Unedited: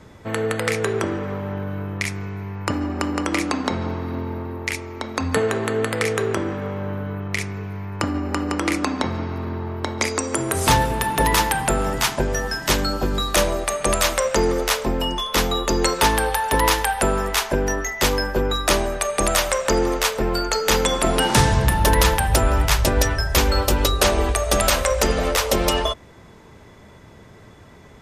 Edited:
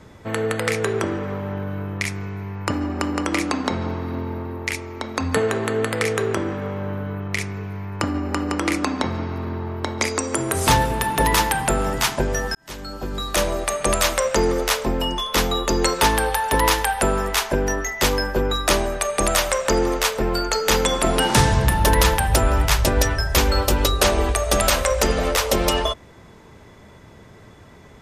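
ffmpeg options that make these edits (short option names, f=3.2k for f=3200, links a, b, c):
-filter_complex "[0:a]asplit=2[a][b];[a]atrim=end=12.55,asetpts=PTS-STARTPTS,afade=t=out:st=12.546:d=0.004:c=hsin[c];[b]atrim=start=12.55,asetpts=PTS-STARTPTS,afade=t=in:d=1.1[d];[c][d]concat=n=2:v=0:a=1"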